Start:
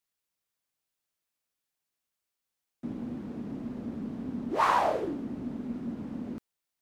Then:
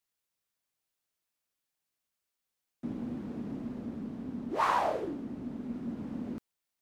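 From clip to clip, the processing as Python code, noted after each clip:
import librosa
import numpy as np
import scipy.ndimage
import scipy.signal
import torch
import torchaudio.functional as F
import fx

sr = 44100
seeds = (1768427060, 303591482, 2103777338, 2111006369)

y = fx.rider(x, sr, range_db=4, speed_s=2.0)
y = y * 10.0 ** (-4.5 / 20.0)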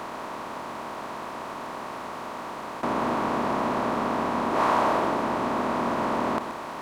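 y = fx.bin_compress(x, sr, power=0.2)
y = y + 10.0 ** (-10.0 / 20.0) * np.pad(y, (int(128 * sr / 1000.0), 0))[:len(y)]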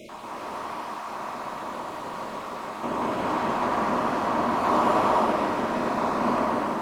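y = fx.spec_dropout(x, sr, seeds[0], share_pct=33)
y = fx.rev_gated(y, sr, seeds[1], gate_ms=490, shape='flat', drr_db=-6.0)
y = y * 10.0 ** (-4.0 / 20.0)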